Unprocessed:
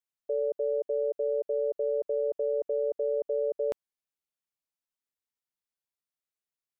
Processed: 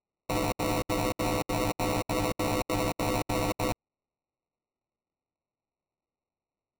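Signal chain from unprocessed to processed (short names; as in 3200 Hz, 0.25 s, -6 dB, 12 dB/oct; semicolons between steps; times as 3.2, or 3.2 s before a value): FFT order left unsorted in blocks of 128 samples; sample-and-hold 27×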